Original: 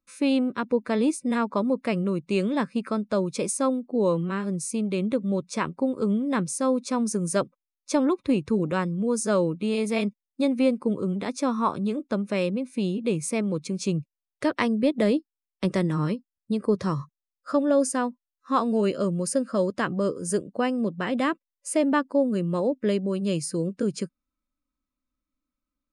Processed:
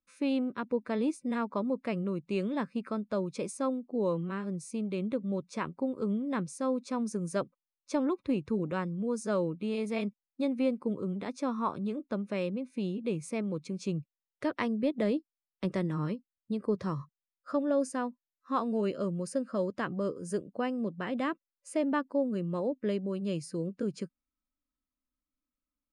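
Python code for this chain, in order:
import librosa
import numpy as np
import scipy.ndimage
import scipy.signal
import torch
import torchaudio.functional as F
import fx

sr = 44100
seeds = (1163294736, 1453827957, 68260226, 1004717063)

y = fx.lowpass(x, sr, hz=3700.0, slope=6)
y = y * 10.0 ** (-7.0 / 20.0)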